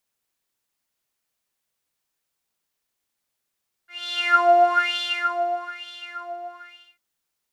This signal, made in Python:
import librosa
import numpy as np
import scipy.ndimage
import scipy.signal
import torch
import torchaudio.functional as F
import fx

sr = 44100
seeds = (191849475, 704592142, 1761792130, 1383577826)

y = fx.sub_patch_wobble(sr, seeds[0], note=77, wave='saw', wave2='saw', interval_st=12, level2_db=-3.5, sub_db=-6.0, noise_db=-30.0, kind='bandpass', cutoff_hz=1300.0, q=7.5, env_oct=0.5, env_decay_s=0.27, env_sustain_pct=40, attack_ms=494.0, decay_s=1.37, sustain_db=-17, release_s=0.76, note_s=2.34, lfo_hz=1.1, wobble_oct=1.2)